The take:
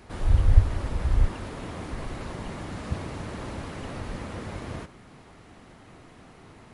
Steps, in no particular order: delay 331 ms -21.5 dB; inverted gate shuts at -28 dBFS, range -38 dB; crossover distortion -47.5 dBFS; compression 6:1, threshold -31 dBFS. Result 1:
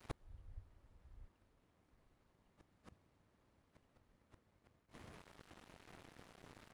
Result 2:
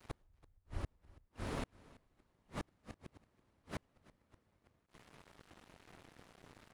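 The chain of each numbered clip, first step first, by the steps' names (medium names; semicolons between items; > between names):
crossover distortion > delay > inverted gate > compression; crossover distortion > compression > inverted gate > delay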